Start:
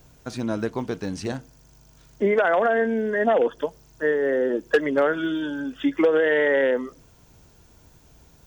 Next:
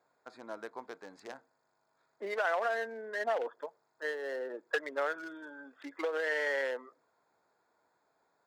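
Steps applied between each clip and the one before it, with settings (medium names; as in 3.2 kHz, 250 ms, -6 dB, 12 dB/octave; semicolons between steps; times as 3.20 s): local Wiener filter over 15 samples; high-pass 740 Hz 12 dB/octave; trim -7 dB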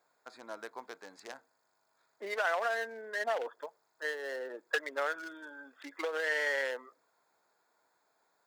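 tilt EQ +2 dB/octave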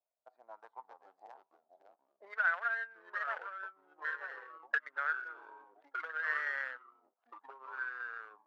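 ever faster or slower copies 312 ms, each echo -3 st, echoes 3, each echo -6 dB; power-law waveshaper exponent 1.4; auto-wah 640–1500 Hz, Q 4.9, up, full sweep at -38.5 dBFS; trim +7.5 dB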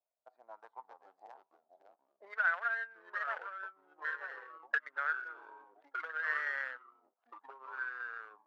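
no audible change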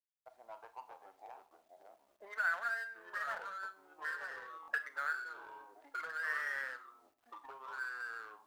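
companding laws mixed up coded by mu; reverberation RT60 0.35 s, pre-delay 25 ms, DRR 11 dB; buffer glitch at 4.61 s, samples 1024, times 2; trim -4.5 dB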